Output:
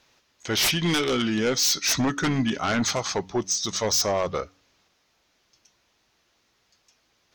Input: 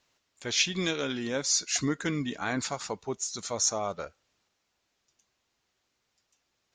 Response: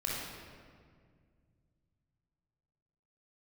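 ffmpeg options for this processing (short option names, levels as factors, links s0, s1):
-af "aeval=exprs='0.282*sin(PI/2*4.47*val(0)/0.282)':c=same,asetrate=40517,aresample=44100,bandreject=f=94.45:t=h:w=4,bandreject=f=188.9:t=h:w=4,bandreject=f=283.35:t=h:w=4,volume=0.447"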